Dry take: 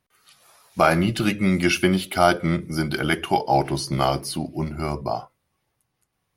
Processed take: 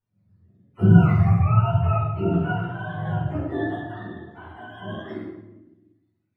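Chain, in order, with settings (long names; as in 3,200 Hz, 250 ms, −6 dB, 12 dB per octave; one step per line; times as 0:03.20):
frequency axis turned over on the octave scale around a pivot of 490 Hz
0:00.79–0:01.62: low shelf with overshoot 210 Hz +8.5 dB, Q 1.5
0:03.75–0:04.70: downward compressor 5 to 1, threshold −31 dBFS, peak gain reduction 13 dB
rectangular room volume 410 cubic metres, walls mixed, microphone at 4.8 metres
level −17.5 dB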